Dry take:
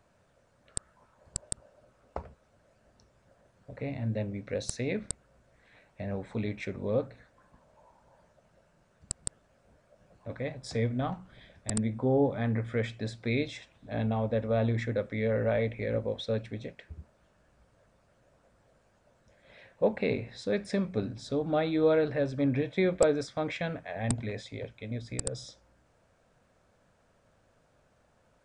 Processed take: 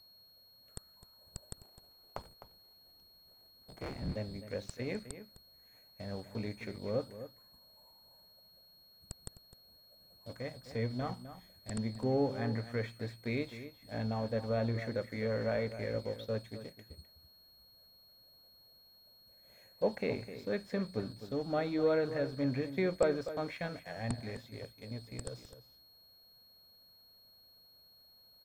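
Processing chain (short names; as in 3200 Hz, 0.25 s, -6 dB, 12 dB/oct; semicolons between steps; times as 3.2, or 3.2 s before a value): 1.49–4.16 cycle switcher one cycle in 3, inverted; dynamic EQ 1600 Hz, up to +4 dB, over -47 dBFS, Q 0.92; whine 4300 Hz -39 dBFS; crossover distortion -45 dBFS; high shelf 2900 Hz -9.5 dB; outdoor echo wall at 44 m, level -12 dB; gain -5 dB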